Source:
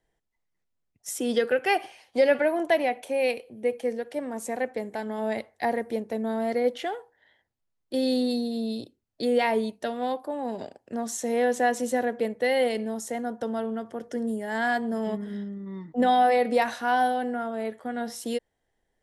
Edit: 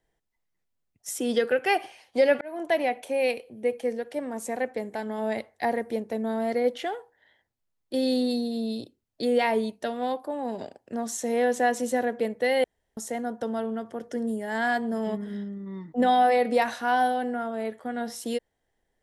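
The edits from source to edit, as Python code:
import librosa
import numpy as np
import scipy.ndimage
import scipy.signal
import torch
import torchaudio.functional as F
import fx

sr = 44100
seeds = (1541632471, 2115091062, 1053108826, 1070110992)

y = fx.edit(x, sr, fx.fade_in_span(start_s=2.41, length_s=0.54, curve='qsin'),
    fx.room_tone_fill(start_s=12.64, length_s=0.33), tone=tone)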